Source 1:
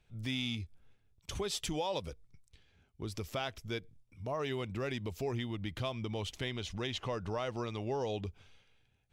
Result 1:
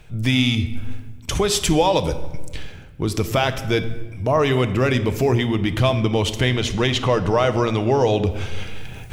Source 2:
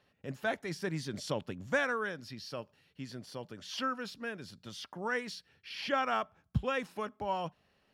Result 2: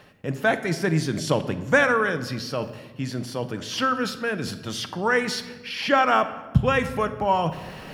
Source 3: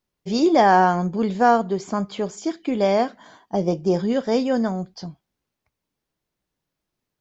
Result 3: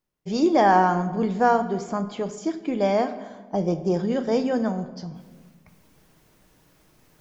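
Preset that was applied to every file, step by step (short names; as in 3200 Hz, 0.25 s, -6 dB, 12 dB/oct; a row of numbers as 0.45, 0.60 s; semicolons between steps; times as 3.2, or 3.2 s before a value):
bell 4100 Hz -4 dB 0.9 oct; reverse; upward compressor, threshold -36 dBFS; reverse; shoebox room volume 990 m³, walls mixed, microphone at 0.55 m; normalise peaks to -6 dBFS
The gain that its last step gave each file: +18.0, +12.5, -2.5 dB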